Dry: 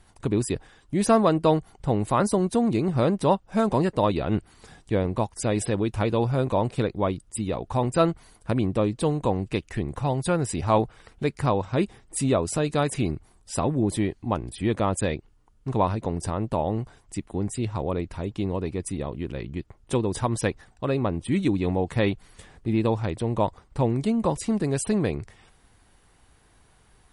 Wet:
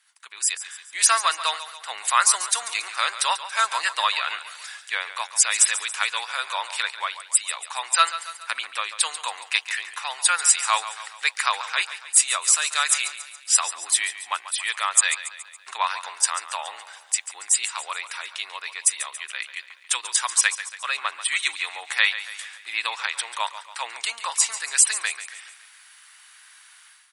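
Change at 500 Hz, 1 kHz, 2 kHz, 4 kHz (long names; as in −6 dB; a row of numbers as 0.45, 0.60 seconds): −18.0, +2.5, +13.0, +14.5 decibels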